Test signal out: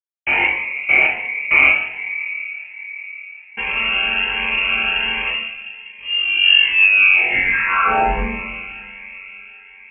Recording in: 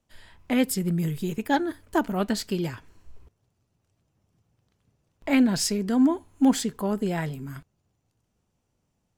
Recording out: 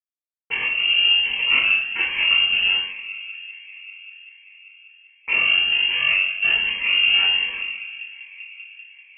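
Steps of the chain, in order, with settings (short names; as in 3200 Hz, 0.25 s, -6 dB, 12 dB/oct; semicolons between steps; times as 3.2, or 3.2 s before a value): chord vocoder major triad, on F#3; low shelf 380 Hz -5.5 dB; notches 60/120/180 Hz; in parallel at 0 dB: compressor 12:1, threshold -35 dBFS; on the sum: sample leveller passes 5; bit-crush 6-bit; air absorption 160 m; on a send: band-limited delay 0.195 s, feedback 82%, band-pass 430 Hz, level -12.5 dB; on the sum: two-slope reverb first 0.69 s, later 2.3 s, from -18 dB, DRR -5.5 dB; inverted band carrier 3000 Hz; cascading phaser rising 1.3 Hz; gain -6 dB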